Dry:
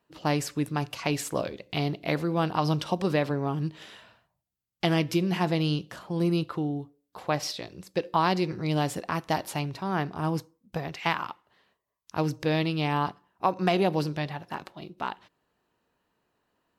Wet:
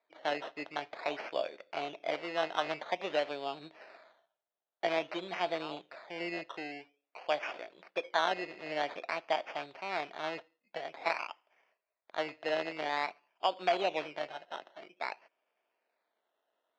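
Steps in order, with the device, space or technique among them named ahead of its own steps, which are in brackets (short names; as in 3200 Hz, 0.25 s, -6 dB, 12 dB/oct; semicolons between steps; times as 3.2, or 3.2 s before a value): circuit-bent sampling toy (decimation with a swept rate 15×, swing 60% 0.5 Hz; speaker cabinet 430–4400 Hz, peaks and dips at 650 Hz +8 dB, 1100 Hz -3 dB, 2400 Hz +6 dB); low shelf 230 Hz -9 dB; gain -5.5 dB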